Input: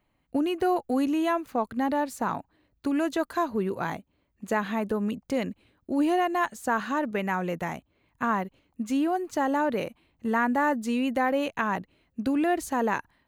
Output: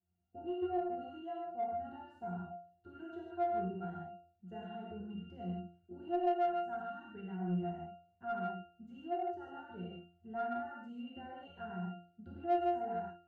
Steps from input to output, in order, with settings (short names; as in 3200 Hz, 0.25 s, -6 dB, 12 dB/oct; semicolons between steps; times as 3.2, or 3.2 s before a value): 6.27–7.13 bell 530 Hz -12.5 dB 0.32 oct; octave resonator F, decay 0.43 s; non-linear reverb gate 0.18 s flat, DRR -4.5 dB; in parallel at -6.5 dB: soft clip -32.5 dBFS, distortion -9 dB; on the sum: gain -4 dB